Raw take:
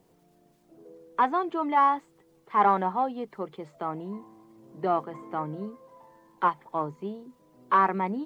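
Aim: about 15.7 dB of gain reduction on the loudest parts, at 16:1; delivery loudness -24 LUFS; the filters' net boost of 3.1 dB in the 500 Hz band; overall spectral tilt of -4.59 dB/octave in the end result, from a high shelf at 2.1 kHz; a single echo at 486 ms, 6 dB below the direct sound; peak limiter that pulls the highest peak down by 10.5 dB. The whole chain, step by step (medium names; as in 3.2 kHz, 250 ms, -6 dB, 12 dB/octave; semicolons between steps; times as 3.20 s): peaking EQ 500 Hz +5 dB; treble shelf 2.1 kHz -9 dB; compression 16:1, threshold -33 dBFS; peak limiter -30.5 dBFS; delay 486 ms -6 dB; trim +18 dB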